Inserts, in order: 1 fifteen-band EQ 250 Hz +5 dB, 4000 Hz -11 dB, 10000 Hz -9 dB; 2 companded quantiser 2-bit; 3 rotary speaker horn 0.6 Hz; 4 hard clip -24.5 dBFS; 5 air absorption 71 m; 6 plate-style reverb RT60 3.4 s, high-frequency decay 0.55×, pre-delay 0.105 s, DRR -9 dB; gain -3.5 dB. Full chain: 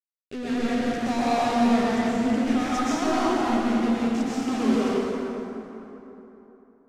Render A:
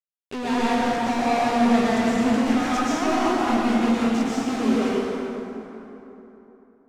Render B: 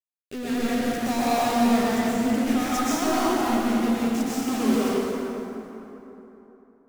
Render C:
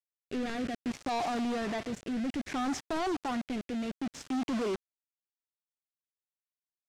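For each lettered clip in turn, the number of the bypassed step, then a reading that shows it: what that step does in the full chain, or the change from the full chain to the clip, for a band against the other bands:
3, 2 kHz band +1.5 dB; 5, 8 kHz band +5.5 dB; 6, crest factor change -7.5 dB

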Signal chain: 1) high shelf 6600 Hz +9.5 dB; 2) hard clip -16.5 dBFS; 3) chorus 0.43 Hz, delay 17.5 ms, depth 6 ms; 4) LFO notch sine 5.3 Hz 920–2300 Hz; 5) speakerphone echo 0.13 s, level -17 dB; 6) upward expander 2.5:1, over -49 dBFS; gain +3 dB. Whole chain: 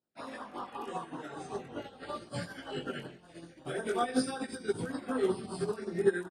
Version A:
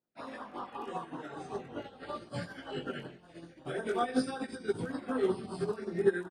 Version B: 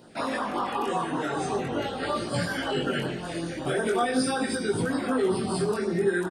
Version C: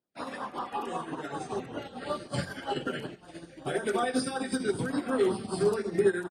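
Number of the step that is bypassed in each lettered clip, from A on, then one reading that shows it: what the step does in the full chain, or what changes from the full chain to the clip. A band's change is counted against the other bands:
1, 8 kHz band -6.0 dB; 6, 500 Hz band -3.5 dB; 3, crest factor change -3.5 dB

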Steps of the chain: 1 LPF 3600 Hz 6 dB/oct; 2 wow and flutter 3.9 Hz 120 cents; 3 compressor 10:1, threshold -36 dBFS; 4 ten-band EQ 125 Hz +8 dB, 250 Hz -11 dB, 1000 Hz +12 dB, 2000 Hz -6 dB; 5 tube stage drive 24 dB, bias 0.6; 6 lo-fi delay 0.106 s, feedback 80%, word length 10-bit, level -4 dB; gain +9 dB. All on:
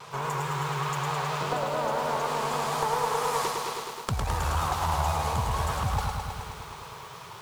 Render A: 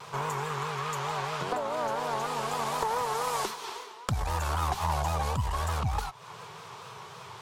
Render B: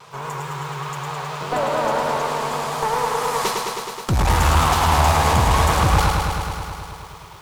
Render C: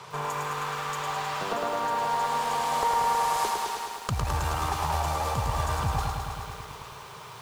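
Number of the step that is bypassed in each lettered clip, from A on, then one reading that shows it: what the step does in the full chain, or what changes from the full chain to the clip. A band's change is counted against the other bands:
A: 6, crest factor change +2.0 dB; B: 3, mean gain reduction 6.0 dB; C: 2, 1 kHz band +2.5 dB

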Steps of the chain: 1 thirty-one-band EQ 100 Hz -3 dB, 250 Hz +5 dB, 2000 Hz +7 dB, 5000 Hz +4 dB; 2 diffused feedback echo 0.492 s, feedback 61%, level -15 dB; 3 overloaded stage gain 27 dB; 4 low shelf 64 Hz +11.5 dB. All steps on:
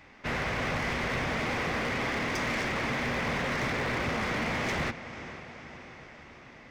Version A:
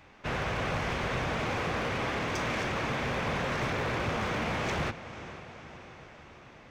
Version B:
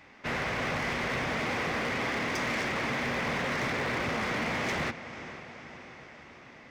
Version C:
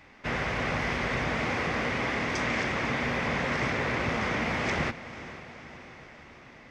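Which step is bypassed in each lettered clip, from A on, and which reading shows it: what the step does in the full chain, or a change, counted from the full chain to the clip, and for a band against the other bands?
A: 1, loudness change -1.0 LU; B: 4, 125 Hz band -2.5 dB; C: 3, distortion -13 dB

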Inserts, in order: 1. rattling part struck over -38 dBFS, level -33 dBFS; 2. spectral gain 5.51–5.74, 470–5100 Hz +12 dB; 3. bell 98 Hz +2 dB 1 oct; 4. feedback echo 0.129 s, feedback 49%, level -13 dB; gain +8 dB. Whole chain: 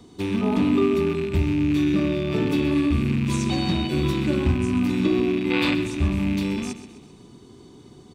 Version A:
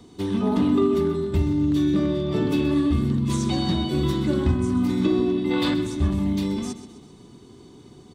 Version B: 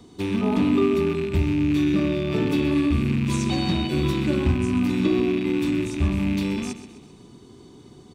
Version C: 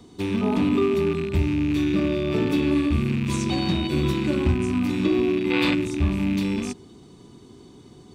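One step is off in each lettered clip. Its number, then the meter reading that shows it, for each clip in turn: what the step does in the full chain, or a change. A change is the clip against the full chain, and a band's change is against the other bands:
1, 2 kHz band -6.5 dB; 2, 2 kHz band -2.0 dB; 4, echo-to-direct -12.0 dB to none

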